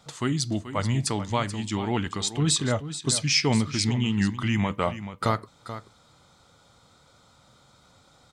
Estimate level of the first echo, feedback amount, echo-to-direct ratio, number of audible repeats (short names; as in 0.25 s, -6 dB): -12.0 dB, no steady repeat, -12.0 dB, 1